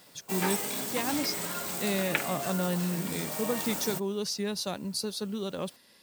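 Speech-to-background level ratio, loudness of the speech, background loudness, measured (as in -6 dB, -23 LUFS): -0.5 dB, -33.0 LUFS, -32.5 LUFS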